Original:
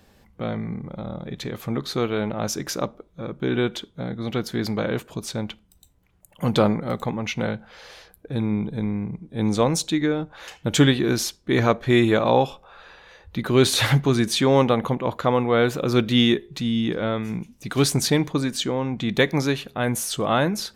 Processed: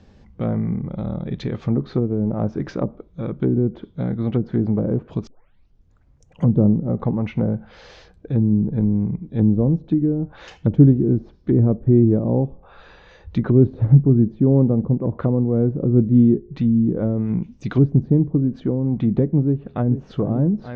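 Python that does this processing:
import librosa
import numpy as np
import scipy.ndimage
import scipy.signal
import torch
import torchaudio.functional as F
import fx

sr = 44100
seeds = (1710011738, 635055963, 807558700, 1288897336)

y = fx.echo_throw(x, sr, start_s=19.44, length_s=0.61, ms=440, feedback_pct=80, wet_db=-11.5)
y = fx.edit(y, sr, fx.tape_start(start_s=5.27, length_s=1.18), tone=tone)
y = fx.env_lowpass_down(y, sr, base_hz=350.0, full_db=-19.5)
y = scipy.signal.sosfilt(scipy.signal.butter(6, 6700.0, 'lowpass', fs=sr, output='sos'), y)
y = fx.low_shelf(y, sr, hz=440.0, db=11.5)
y = y * librosa.db_to_amplitude(-2.5)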